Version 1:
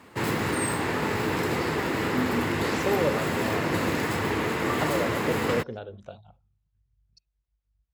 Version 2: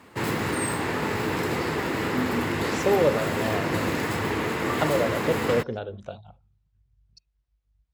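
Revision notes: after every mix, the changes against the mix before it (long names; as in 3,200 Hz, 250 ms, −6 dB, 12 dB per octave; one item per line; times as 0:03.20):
speech +5.0 dB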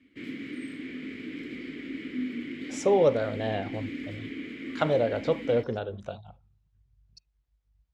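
background: add formant filter i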